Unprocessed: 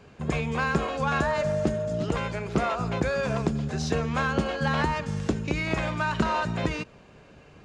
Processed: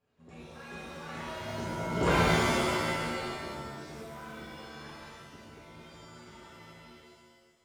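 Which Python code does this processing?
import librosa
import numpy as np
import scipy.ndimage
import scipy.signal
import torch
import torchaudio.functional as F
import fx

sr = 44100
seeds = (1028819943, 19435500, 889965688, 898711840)

y = fx.doppler_pass(x, sr, speed_mps=15, closest_m=1.4, pass_at_s=2.11)
y = fx.buffer_crackle(y, sr, first_s=0.85, period_s=0.31, block=512, kind='repeat')
y = fx.rev_shimmer(y, sr, seeds[0], rt60_s=1.4, semitones=7, shimmer_db=-2, drr_db=-7.0)
y = y * librosa.db_to_amplitude(-3.0)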